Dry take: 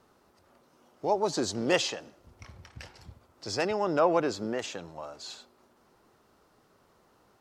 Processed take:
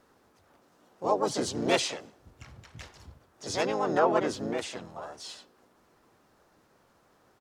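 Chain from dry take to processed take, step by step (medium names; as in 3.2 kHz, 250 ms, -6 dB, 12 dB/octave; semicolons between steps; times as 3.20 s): harmony voices -5 st -7 dB, +4 st -2 dB; trim -2.5 dB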